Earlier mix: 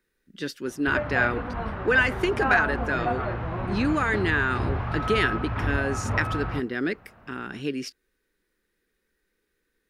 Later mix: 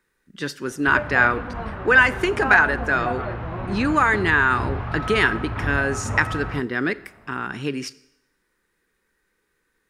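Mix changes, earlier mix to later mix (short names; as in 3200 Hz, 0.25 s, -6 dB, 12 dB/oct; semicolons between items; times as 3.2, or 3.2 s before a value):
speech: add graphic EQ 125/1000/2000/8000 Hz +6/+10/+3/+6 dB; reverb: on, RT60 0.85 s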